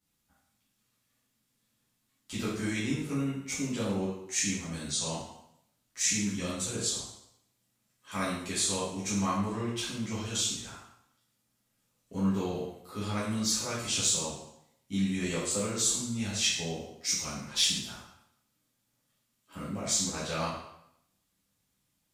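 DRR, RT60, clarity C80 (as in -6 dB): -10.0 dB, 0.75 s, 5.0 dB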